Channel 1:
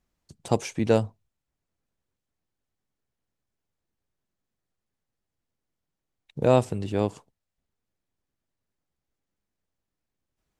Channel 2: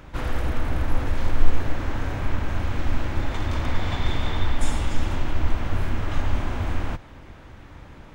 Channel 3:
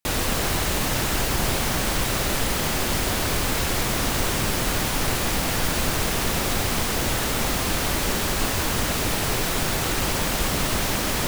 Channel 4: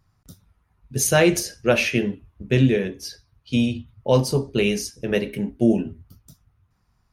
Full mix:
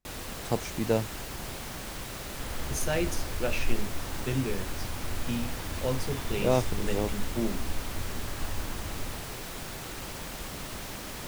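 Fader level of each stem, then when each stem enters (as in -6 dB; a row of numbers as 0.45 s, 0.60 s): -5.5 dB, -12.0 dB, -15.0 dB, -13.0 dB; 0.00 s, 2.25 s, 0.00 s, 1.75 s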